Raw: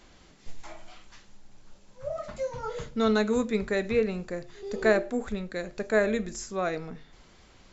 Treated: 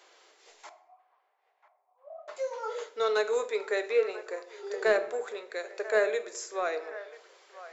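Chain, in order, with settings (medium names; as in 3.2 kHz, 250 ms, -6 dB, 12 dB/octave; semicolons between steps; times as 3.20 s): elliptic high-pass 400 Hz, stop band 60 dB; saturation -15 dBFS, distortion -22 dB; 0.69–2.28 s: cascade formant filter a; feedback echo behind a band-pass 989 ms, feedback 50%, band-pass 1.1 kHz, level -14.5 dB; on a send at -12 dB: reverberation RT60 0.75 s, pre-delay 6 ms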